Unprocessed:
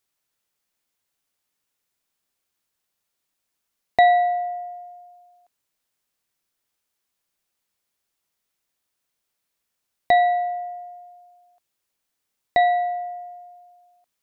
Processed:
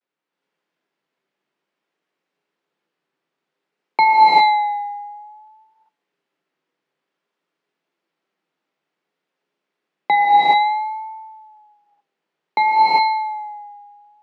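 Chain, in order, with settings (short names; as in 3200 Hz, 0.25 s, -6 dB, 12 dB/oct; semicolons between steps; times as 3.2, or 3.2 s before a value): bell 230 Hz +5.5 dB 1.1 oct; frequency shift +140 Hz; non-linear reverb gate 0.44 s rising, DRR -6.5 dB; low-pass opened by the level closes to 2400 Hz, open at -17.5 dBFS; de-hum 118.7 Hz, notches 12; vibrato 0.56 Hz 59 cents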